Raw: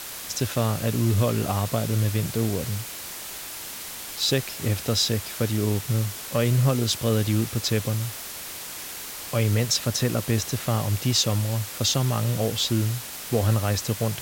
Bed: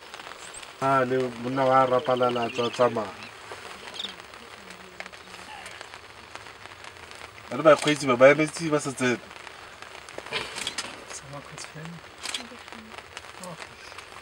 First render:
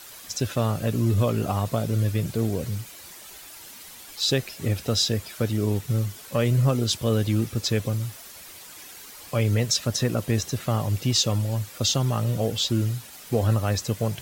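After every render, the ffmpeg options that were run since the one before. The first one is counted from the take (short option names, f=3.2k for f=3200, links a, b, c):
-af "afftdn=nr=10:nf=-37"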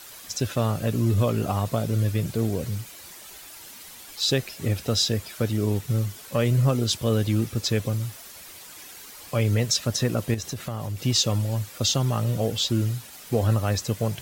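-filter_complex "[0:a]asettb=1/sr,asplit=3[a][b][c];[a]atrim=end=10.344[d];[b]atrim=start=10.34:end=11,asetpts=PTS-STARTPTS,afade=t=in:d=0.004:c=qsin,afade=t=out:st=0.656:d=0.004:c=qsin,acompressor=threshold=-27dB:ratio=4:attack=3.2:release=140:knee=1:detection=peak[e];[c]atrim=start=10.996[f];[d][e]acrossfade=d=0.004:c1=hsin:c2=qsin[g];[g][f]acrossfade=d=0.004:c1=qsin:c2=hsin"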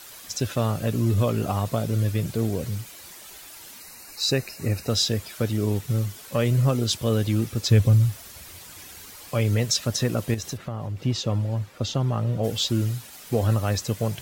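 -filter_complex "[0:a]asettb=1/sr,asplit=3[a][b][c];[a]atrim=end=3.804[d];[b]atrim=start=3.8:end=4.9,asetpts=PTS-STARTPTS,afade=t=in:d=0.004:c=qsin,afade=t=out:st=1.096:d=0.004:c=qsin,asuperstop=centerf=3300:order=8:qfactor=3.7[e];[c]atrim=start=4.896[f];[d][e]acrossfade=d=0.004:c1=hsin:c2=qsin[g];[g][f]acrossfade=d=0.004:c1=qsin:c2=hsin,asettb=1/sr,asplit=3[h][i][j];[h]atrim=end=7.694[k];[i]atrim=start=7.69:end=9.16,asetpts=PTS-STARTPTS,afade=t=in:d=0.004:c=qsin,afade=t=out:st=1.466:d=0.004:c=qsin,equalizer=f=77:w=0.76:g=14[l];[j]atrim=start=9.156[m];[k][l]acrossfade=d=0.004:c1=hsin:c2=qsin[n];[n][m]acrossfade=d=0.004:c1=qsin:c2=hsin,asplit=3[o][p][q];[o]afade=t=out:st=10.56:d=0.02[r];[p]lowpass=f=1.6k:p=1,afade=t=in:st=10.56:d=0.02,afade=t=out:st=12.43:d=0.02[s];[q]afade=t=in:st=12.43:d=0.02[t];[r][s][t]amix=inputs=3:normalize=0"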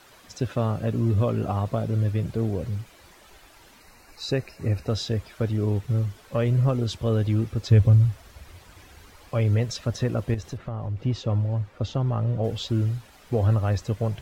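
-af "lowpass=f=1.5k:p=1,asubboost=boost=3:cutoff=80"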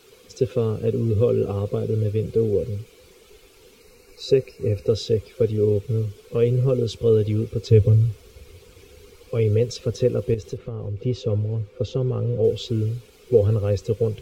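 -af "superequalizer=7b=3.98:8b=0.398:9b=0.355:10b=0.501:11b=0.355"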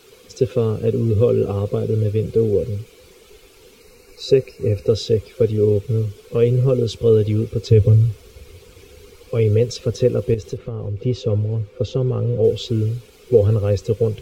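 -af "volume=3.5dB,alimiter=limit=-3dB:level=0:latency=1"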